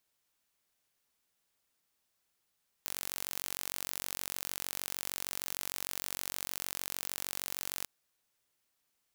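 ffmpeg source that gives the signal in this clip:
ffmpeg -f lavfi -i "aevalsrc='0.316*eq(mod(n,948),0)':duration=5:sample_rate=44100" out.wav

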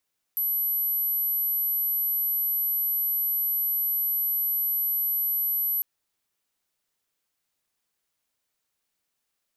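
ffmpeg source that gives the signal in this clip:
ffmpeg -f lavfi -i "sine=frequency=11800:duration=5.45:sample_rate=44100,volume=-4.94dB" out.wav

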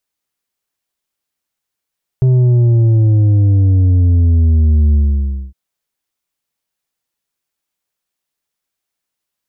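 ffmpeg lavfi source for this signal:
ffmpeg -f lavfi -i "aevalsrc='0.398*clip((3.31-t)/0.59,0,1)*tanh(2*sin(2*PI*130*3.31/log(65/130)*(exp(log(65/130)*t/3.31)-1)))/tanh(2)':duration=3.31:sample_rate=44100" out.wav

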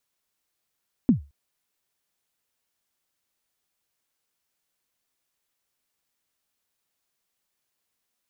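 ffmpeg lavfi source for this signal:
ffmpeg -f lavfi -i "aevalsrc='0.316*pow(10,-3*t/0.27)*sin(2*PI*(280*0.116/log(71/280)*(exp(log(71/280)*min(t,0.116)/0.116)-1)+71*max(t-0.116,0)))':duration=0.22:sample_rate=44100" out.wav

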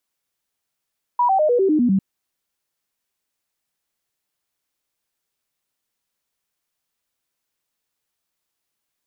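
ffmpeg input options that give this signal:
ffmpeg -f lavfi -i "aevalsrc='0.211*clip(min(mod(t,0.1),0.1-mod(t,0.1))/0.005,0,1)*sin(2*PI*972*pow(2,-floor(t/0.1)/3)*mod(t,0.1))':duration=0.8:sample_rate=44100" out.wav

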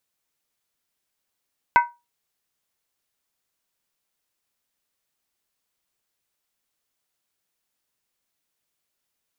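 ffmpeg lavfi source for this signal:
ffmpeg -f lavfi -i "aevalsrc='0.376*pow(10,-3*t/0.24)*sin(2*PI*956*t)+0.188*pow(10,-3*t/0.19)*sin(2*PI*1523.9*t)+0.0944*pow(10,-3*t/0.164)*sin(2*PI*2042*t)+0.0473*pow(10,-3*t/0.158)*sin(2*PI*2195*t)+0.0237*pow(10,-3*t/0.147)*sin(2*PI*2536.3*t)':duration=0.63:sample_rate=44100" out.wav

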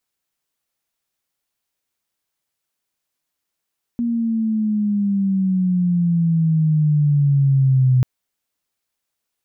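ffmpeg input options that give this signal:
ffmpeg -f lavfi -i "aevalsrc='pow(10,(-11+6.5*(t/4.04-1))/20)*sin(2*PI*238*4.04/(-11*log(2)/12)*(exp(-11*log(2)/12*t/4.04)-1))':duration=4.04:sample_rate=44100" out.wav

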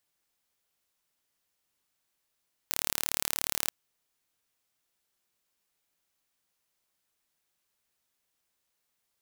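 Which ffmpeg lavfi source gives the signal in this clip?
ffmpeg -f lavfi -i "aevalsrc='0.794*eq(mod(n,1195),0)':duration=0.99:sample_rate=44100" out.wav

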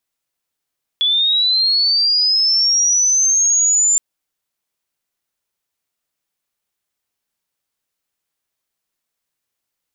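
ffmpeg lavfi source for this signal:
ffmpeg -f lavfi -i "aevalsrc='pow(10,(-12.5+1.5*t/2.97)/20)*sin(2*PI*(3400*t+3800*t*t/(2*2.97)))':duration=2.97:sample_rate=44100" out.wav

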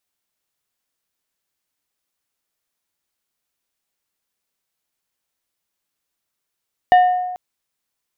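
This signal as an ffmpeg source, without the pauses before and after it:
ffmpeg -f lavfi -i "aevalsrc='0.501*pow(10,-3*t/1.25)*sin(2*PI*727*t)+0.133*pow(10,-3*t/0.658)*sin(2*PI*1817.5*t)+0.0355*pow(10,-3*t/0.474)*sin(2*PI*2908*t)+0.00944*pow(10,-3*t/0.405)*sin(2*PI*3635*t)+0.00251*pow(10,-3*t/0.337)*sin(2*PI*4725.5*t)':duration=0.44:sample_rate=44100" out.wav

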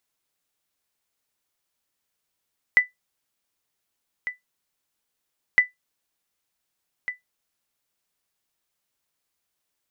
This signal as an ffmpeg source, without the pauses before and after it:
ffmpeg -f lavfi -i "aevalsrc='0.447*(sin(2*PI*1990*mod(t,2.81))*exp(-6.91*mod(t,2.81)/0.15)+0.211*sin(2*PI*1990*max(mod(t,2.81)-1.5,0))*exp(-6.91*max(mod(t,2.81)-1.5,0)/0.15))':duration=5.62:sample_rate=44100" out.wav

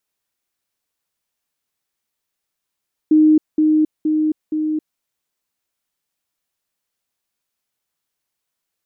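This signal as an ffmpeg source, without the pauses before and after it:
ffmpeg -f lavfi -i "aevalsrc='pow(10,(-8-3*floor(t/0.47))/20)*sin(2*PI*309*t)*clip(min(mod(t,0.47),0.27-mod(t,0.47))/0.005,0,1)':duration=1.88:sample_rate=44100" out.wav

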